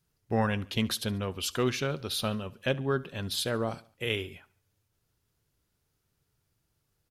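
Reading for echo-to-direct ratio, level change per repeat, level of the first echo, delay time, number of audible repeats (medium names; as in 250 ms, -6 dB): -20.5 dB, -7.0 dB, -21.5 dB, 71 ms, 2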